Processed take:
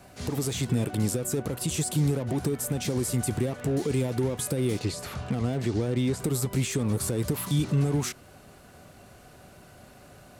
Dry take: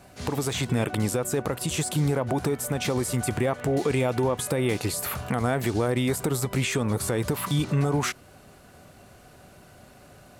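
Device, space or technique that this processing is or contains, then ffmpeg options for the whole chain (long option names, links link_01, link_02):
one-band saturation: -filter_complex "[0:a]asettb=1/sr,asplit=3[link_01][link_02][link_03];[link_01]atrim=end=4.794[link_04];[link_02]atrim=start=4.79:end=6.2,asetpts=PTS-STARTPTS,afade=type=in:duration=0.004:curve=qsin,afade=type=out:start_time=1.406:duration=0.004:curve=qsin,lowpass=5700[link_05];[link_03]atrim=start=6.196[link_06];[link_04][link_05]acrossfade=duration=0.004:curve1=hsin:curve2=qsin[link_07];[link_07][link_06]acrossfade=duration=0.004:curve1=qsin:curve2=hsin,acrossover=split=430|4000[link_08][link_09][link_10];[link_09]asoftclip=type=tanh:threshold=-39.5dB[link_11];[link_08][link_11][link_10]amix=inputs=3:normalize=0"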